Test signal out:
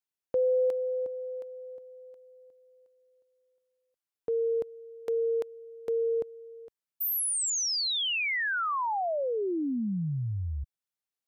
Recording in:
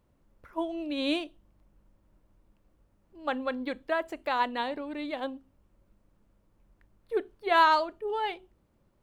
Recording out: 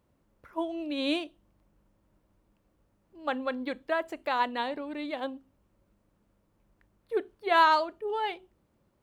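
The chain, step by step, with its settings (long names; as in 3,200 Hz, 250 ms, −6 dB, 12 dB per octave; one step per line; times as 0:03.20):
high-pass filter 77 Hz 6 dB per octave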